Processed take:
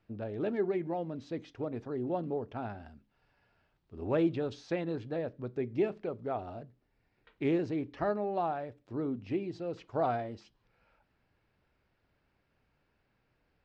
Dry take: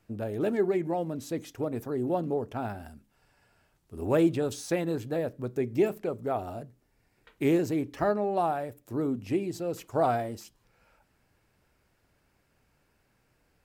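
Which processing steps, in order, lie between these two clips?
low-pass filter 4,500 Hz 24 dB per octave
level −5 dB

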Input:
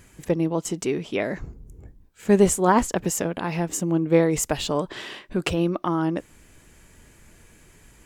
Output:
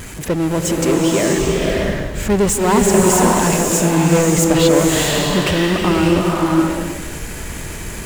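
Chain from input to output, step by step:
power curve on the samples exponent 0.5
slow-attack reverb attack 620 ms, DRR −2.5 dB
level −2.5 dB

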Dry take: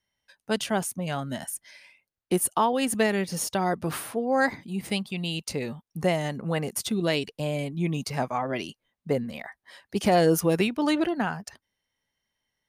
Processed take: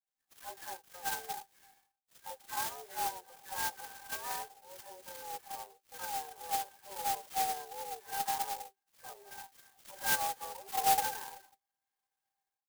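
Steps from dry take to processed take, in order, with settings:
every frequency bin delayed by itself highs early, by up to 454 ms
automatic gain control gain up to 16.5 dB
pitch-shifted copies added −5 semitones −10 dB, +7 semitones −16 dB, +12 semitones −5 dB
downward compressor 2 to 1, threshold −19 dBFS, peak gain reduction 8 dB
single-sideband voice off tune +170 Hz 480–2,900 Hz
harmonic and percussive parts rebalanced percussive −14 dB
resonances in every octave G, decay 0.1 s
converter with an unsteady clock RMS 0.11 ms

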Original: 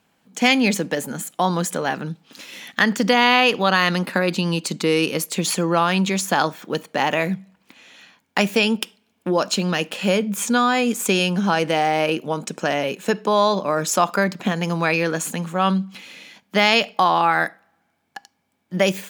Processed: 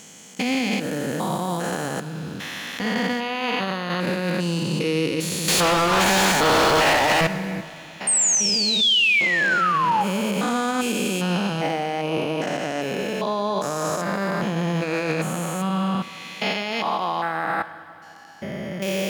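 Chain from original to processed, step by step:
spectrum averaged block by block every 400 ms
in parallel at +2 dB: downward compressor, threshold −36 dBFS, peak gain reduction 19.5 dB
0:05.48–0:07.27: on the sum: mid-hump overdrive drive 37 dB, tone 5,200 Hz, clips at −7 dBFS
0:08.07–0:10.04: sound drawn into the spectrogram fall 800–8,800 Hz −14 dBFS
brickwall limiter −14.5 dBFS, peak gain reduction 10.5 dB
on a send at −11.5 dB: convolution reverb RT60 2.7 s, pre-delay 5 ms

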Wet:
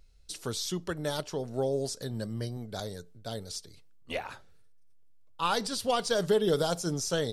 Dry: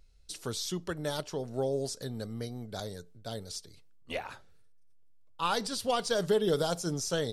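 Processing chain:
0:02.10–0:02.57: EQ curve with evenly spaced ripples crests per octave 1.3, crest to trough 8 dB
level +1.5 dB

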